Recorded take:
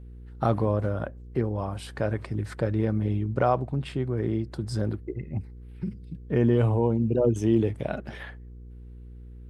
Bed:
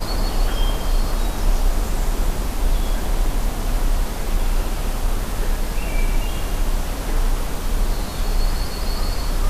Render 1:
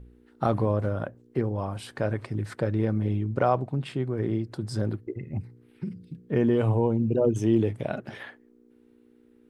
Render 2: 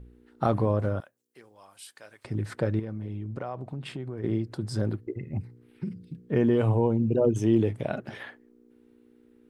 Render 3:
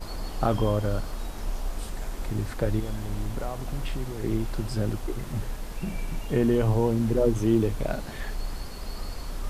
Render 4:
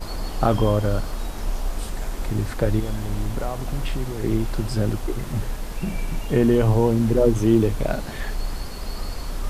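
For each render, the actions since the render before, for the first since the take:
hum removal 60 Hz, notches 3
0:01.00–0:02.25: first difference; 0:02.79–0:04.24: downward compressor 4 to 1, threshold −32 dBFS
mix in bed −12.5 dB
level +5 dB

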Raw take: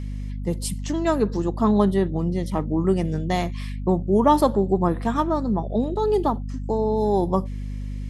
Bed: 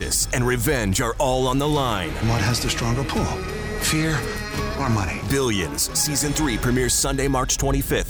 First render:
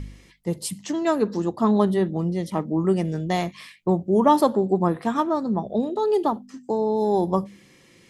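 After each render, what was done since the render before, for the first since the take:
hum removal 50 Hz, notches 5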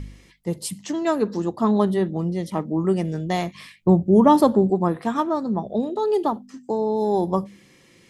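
0:03.55–0:04.70: low-shelf EQ 240 Hz +11 dB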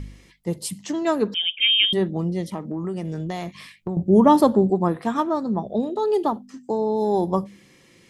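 0:01.34–0:01.93: voice inversion scrambler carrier 3,400 Hz
0:02.53–0:03.97: downward compressor, threshold −24 dBFS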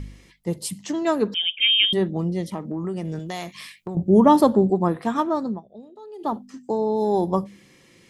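0:03.19–0:03.95: spectral tilt +2 dB per octave
0:05.46–0:06.33: duck −19 dB, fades 0.15 s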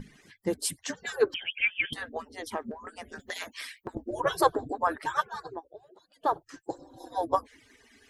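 harmonic-percussive split with one part muted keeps percussive
parametric band 1,600 Hz +11.5 dB 0.31 octaves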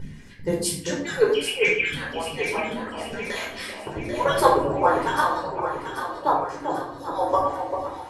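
delay that swaps between a low-pass and a high-pass 394 ms, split 940 Hz, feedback 70%, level −5 dB
rectangular room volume 840 cubic metres, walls furnished, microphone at 4.7 metres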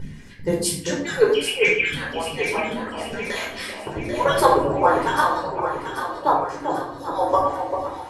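level +2.5 dB
brickwall limiter −3 dBFS, peak gain reduction 2.5 dB

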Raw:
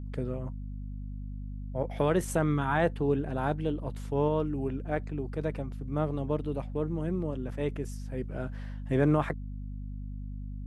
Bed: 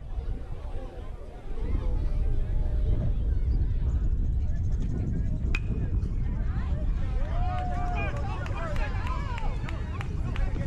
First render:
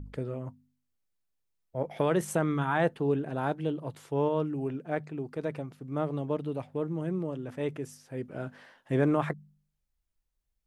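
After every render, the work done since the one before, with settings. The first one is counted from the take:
hum removal 50 Hz, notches 5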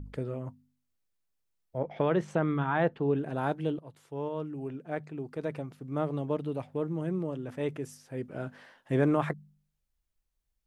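0:01.78–0:03.16: high-frequency loss of the air 170 metres
0:03.79–0:05.71: fade in, from −12 dB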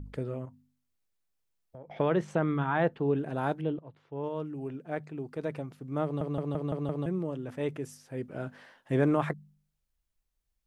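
0:00.45–0:01.90: downward compressor 5 to 1, threshold −44 dBFS
0:03.61–0:04.24: high-frequency loss of the air 270 metres
0:06.04: stutter in place 0.17 s, 6 plays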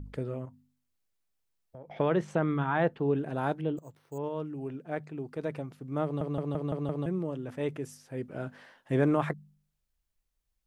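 0:03.77–0:04.18: bad sample-rate conversion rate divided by 6×, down none, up hold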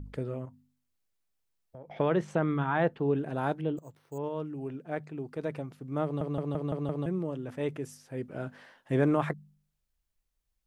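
no processing that can be heard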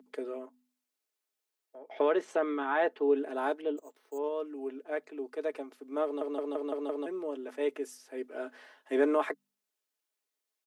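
Chebyshev high-pass filter 280 Hz, order 5
comb filter 4.7 ms, depth 47%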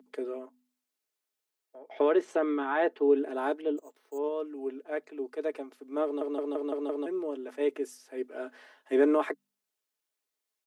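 dynamic equaliser 340 Hz, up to +6 dB, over −41 dBFS, Q 2.2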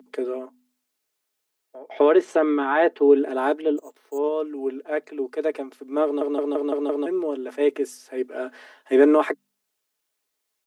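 level +8 dB

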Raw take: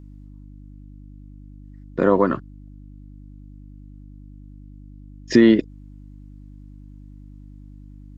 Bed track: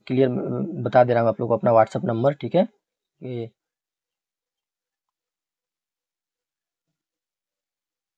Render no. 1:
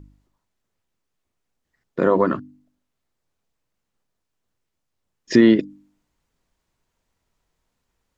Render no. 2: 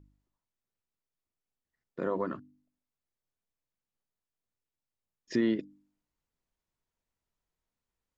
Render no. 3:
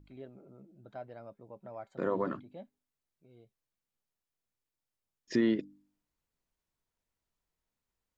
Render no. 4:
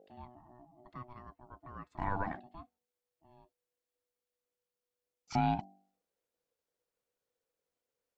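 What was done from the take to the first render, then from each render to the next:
hum removal 50 Hz, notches 6
level −14.5 dB
mix in bed track −29 dB
ring modulation 490 Hz

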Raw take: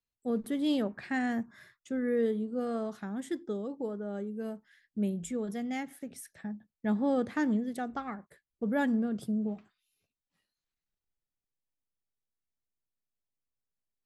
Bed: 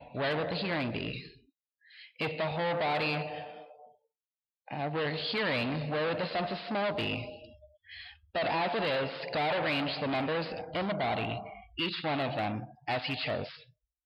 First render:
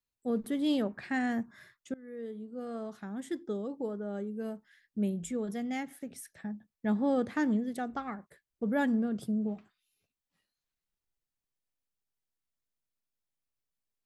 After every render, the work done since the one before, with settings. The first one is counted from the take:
0:01.94–0:03.54: fade in, from −23 dB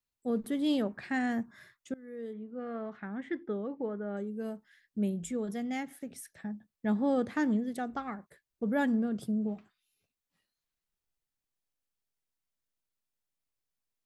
0:02.33–0:04.17: low-pass with resonance 2,100 Hz, resonance Q 2.5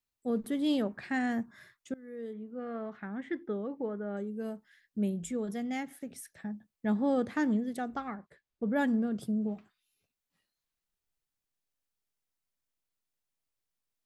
0:08.08–0:08.76: high-frequency loss of the air 92 metres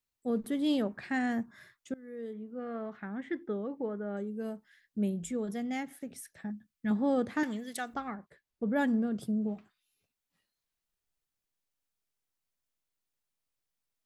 0:06.50–0:06.91: flat-topped bell 610 Hz −10.5 dB
0:07.43–0:07.94: tilt shelving filter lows −10 dB, about 860 Hz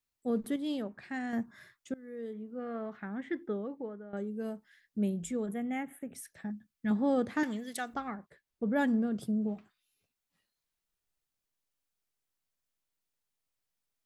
0:00.56–0:01.33: clip gain −6 dB
0:03.52–0:04.13: fade out, to −13.5 dB
0:05.46–0:06.15: Butterworth band-reject 4,900 Hz, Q 0.9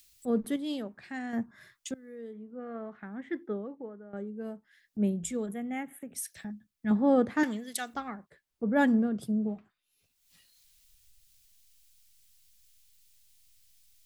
upward compression, threshold −35 dBFS
multiband upward and downward expander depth 70%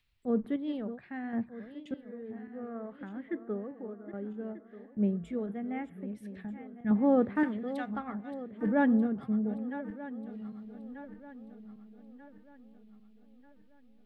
feedback delay that plays each chunk backwards 619 ms, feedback 64%, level −12.5 dB
high-frequency loss of the air 500 metres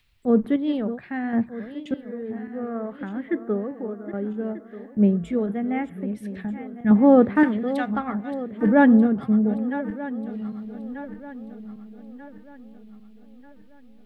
level +10.5 dB

